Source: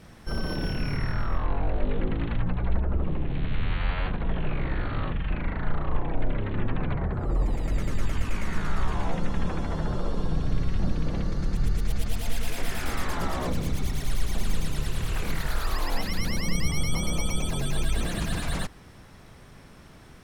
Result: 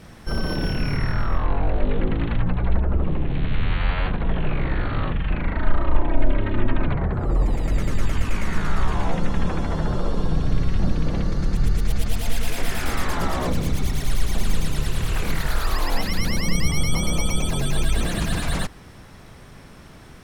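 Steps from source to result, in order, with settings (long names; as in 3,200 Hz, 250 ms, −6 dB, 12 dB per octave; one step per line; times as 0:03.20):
0:05.54–0:06.88: comb filter 3.2 ms, depth 59%
level +5 dB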